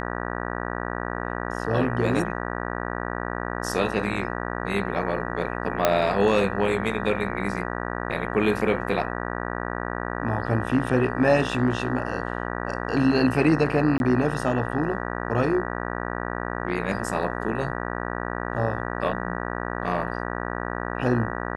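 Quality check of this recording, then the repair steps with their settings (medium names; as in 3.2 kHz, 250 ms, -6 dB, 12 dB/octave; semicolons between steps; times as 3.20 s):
buzz 60 Hz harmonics 32 -30 dBFS
5.85 s: pop -4 dBFS
13.98–14.00 s: dropout 21 ms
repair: de-click; de-hum 60 Hz, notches 32; interpolate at 13.98 s, 21 ms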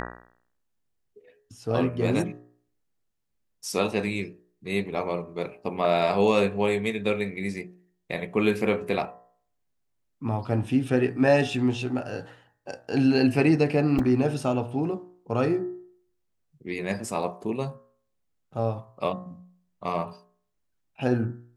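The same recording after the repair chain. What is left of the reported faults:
nothing left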